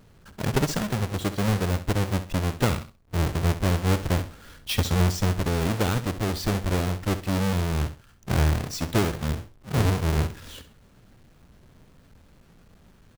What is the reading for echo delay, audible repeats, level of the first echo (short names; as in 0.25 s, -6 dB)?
66 ms, 2, -12.5 dB